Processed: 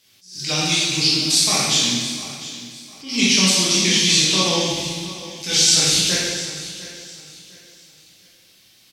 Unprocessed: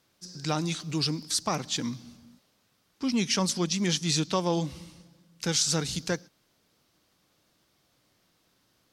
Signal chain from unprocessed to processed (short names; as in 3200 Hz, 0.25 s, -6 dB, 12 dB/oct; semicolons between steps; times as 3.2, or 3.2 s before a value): resonant high shelf 1800 Hz +11 dB, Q 1.5; limiter -9.5 dBFS, peak gain reduction 8 dB; on a send: feedback echo 0.703 s, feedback 31%, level -15.5 dB; on the sum: plate-style reverb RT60 1.6 s, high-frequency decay 0.9×, DRR -8 dB; attack slew limiter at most 120 dB/s; gain -2 dB